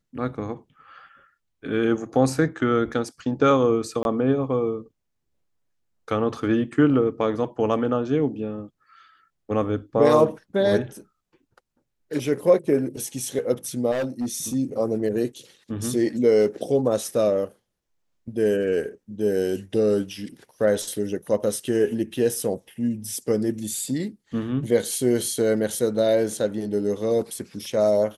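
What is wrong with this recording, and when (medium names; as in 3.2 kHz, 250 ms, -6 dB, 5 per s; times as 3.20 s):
4.03–4.05 s: dropout 21 ms
13.91–14.55 s: clipped -22 dBFS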